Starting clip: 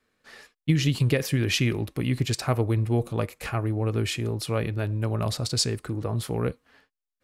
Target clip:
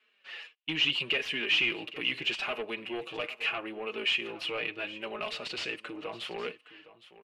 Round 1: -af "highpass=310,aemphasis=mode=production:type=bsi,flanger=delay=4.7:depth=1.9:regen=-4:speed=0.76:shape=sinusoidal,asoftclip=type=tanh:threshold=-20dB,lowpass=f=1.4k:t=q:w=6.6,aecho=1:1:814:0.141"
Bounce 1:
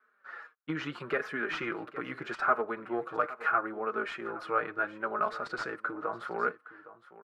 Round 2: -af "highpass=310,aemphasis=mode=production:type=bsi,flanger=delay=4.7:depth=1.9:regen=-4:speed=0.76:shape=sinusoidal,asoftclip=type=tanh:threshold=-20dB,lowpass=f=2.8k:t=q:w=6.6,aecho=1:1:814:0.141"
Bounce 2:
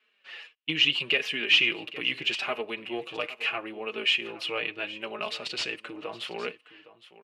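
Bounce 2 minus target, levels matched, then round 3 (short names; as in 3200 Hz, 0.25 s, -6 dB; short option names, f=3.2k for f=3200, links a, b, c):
soft clip: distortion -7 dB
-af "highpass=310,aemphasis=mode=production:type=bsi,flanger=delay=4.7:depth=1.9:regen=-4:speed=0.76:shape=sinusoidal,asoftclip=type=tanh:threshold=-30dB,lowpass=f=2.8k:t=q:w=6.6,aecho=1:1:814:0.141"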